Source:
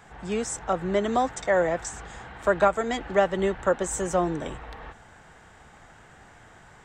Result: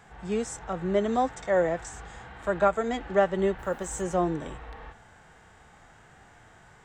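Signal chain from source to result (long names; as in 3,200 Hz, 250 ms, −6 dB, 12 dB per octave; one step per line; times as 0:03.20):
harmonic and percussive parts rebalanced percussive −9 dB
0:03.58–0:04.01: background noise white −65 dBFS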